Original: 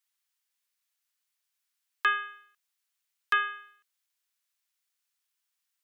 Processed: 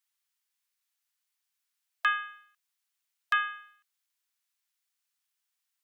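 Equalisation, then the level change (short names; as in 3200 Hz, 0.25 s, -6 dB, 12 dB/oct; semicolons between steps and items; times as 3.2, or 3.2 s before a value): brick-wall FIR high-pass 680 Hz; -1.0 dB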